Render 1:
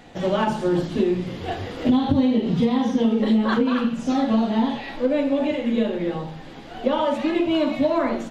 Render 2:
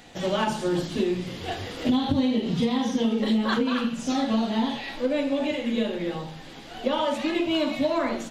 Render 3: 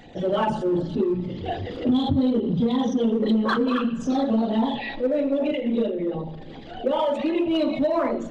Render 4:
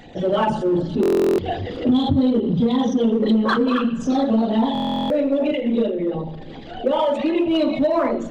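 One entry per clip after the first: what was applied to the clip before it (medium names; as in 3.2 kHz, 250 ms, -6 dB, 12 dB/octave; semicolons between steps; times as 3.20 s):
treble shelf 2.6 kHz +11 dB; trim -4.5 dB
resonances exaggerated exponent 2; in parallel at -7 dB: hard clipper -24.5 dBFS, distortion -10 dB; on the sum: reverberation RT60 3.2 s, pre-delay 52 ms, DRR 19 dB
buffer glitch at 1.01/4.73 s, samples 1024, times 15; trim +3.5 dB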